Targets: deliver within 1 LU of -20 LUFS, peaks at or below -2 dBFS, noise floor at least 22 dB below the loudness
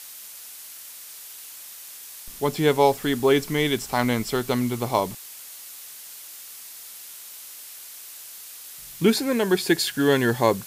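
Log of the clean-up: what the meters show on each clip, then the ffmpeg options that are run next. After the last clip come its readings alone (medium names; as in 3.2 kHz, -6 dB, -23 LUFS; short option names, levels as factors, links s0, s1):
noise floor -42 dBFS; noise floor target -45 dBFS; loudness -22.5 LUFS; peak level -5.0 dBFS; loudness target -20.0 LUFS
-> -af "afftdn=nr=6:nf=-42"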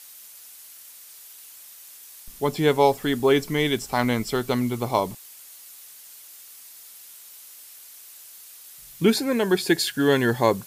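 noise floor -46 dBFS; loudness -22.5 LUFS; peak level -5.5 dBFS; loudness target -20.0 LUFS
-> -af "volume=1.33"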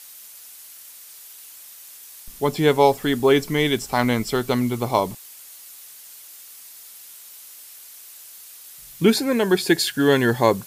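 loudness -20.0 LUFS; peak level -3.0 dBFS; noise floor -43 dBFS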